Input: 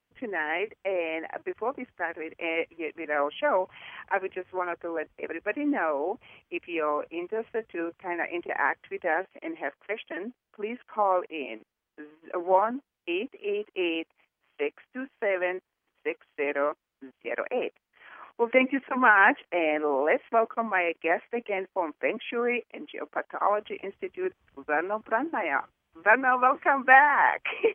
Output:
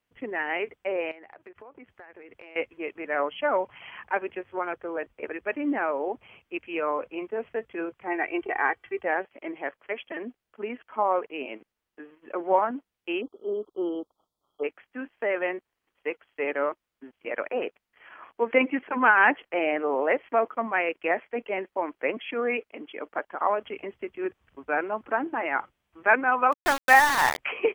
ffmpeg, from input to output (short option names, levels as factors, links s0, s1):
-filter_complex "[0:a]asettb=1/sr,asplit=3[s0][s1][s2];[s0]atrim=end=1.114[s3];[s1]atrim=start=1.11:end=2.56,asetpts=PTS-STARTPTS,afade=t=in:d=0.004:c=qsin,afade=t=out:st=1.446:d=0.004:c=qsin,acompressor=threshold=0.00708:ratio=12:attack=3.2:release=140:knee=1:detection=peak[s4];[s2]atrim=start=2.556[s5];[s3][s4]acrossfade=d=0.004:c1=hsin:c2=qsin[s6];[s6][s5]acrossfade=d=0.004:c1=qsin:c2=hsin,asettb=1/sr,asplit=3[s7][s8][s9];[s7]atrim=end=8.074[s10];[s8]atrim=start=8.07:end=9.03,asetpts=PTS-STARTPTS,afade=t=in:d=0.004:c=qsin,afade=t=out:st=0.956:d=0.004:c=qsin,aecho=1:1:2.6:0.65,atrim=end_sample=42336[s11];[s9]atrim=start=9.026[s12];[s10][s11]acrossfade=d=0.004:c1=hsin:c2=qsin[s13];[s13][s12]acrossfade=d=0.004:c1=qsin:c2=hsin,asplit=3[s14][s15][s16];[s14]afade=t=out:st=13.2:d=0.02[s17];[s15]asuperstop=centerf=2100:order=20:qfactor=1.1,afade=t=in:st=13.2:d=0.02,afade=t=out:st=14.63:d=0.02[s18];[s16]afade=t=in:st=14.63:d=0.02[s19];[s17][s18][s19]amix=inputs=3:normalize=0,asplit=3[s20][s21][s22];[s20]afade=t=out:st=26.52:d=0.02[s23];[s21]aeval=exprs='val(0)*gte(abs(val(0)),0.0708)':c=same,afade=t=in:st=26.52:d=0.02,afade=t=out:st=27.37:d=0.02[s24];[s22]afade=t=in:st=27.37:d=0.02[s25];[s23][s24][s25]amix=inputs=3:normalize=0"